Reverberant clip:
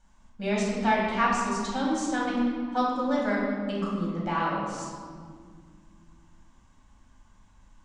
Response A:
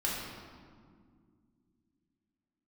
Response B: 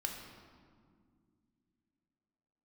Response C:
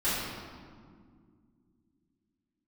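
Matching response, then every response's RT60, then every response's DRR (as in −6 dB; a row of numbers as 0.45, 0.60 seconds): A; 2.1, 2.1, 2.1 seconds; −6.5, 1.0, −15.5 decibels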